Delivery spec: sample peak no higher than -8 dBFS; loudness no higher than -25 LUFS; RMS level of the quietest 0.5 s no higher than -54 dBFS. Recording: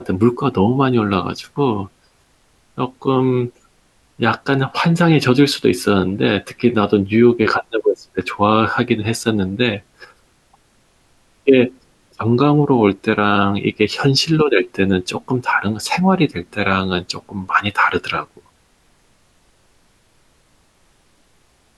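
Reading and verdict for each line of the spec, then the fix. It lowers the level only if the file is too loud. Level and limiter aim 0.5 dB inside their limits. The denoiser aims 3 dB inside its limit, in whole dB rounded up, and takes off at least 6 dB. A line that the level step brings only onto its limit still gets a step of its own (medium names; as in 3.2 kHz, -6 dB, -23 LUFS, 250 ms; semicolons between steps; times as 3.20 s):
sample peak -1.5 dBFS: fail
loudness -17.0 LUFS: fail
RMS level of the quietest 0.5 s -57 dBFS: pass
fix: trim -8.5 dB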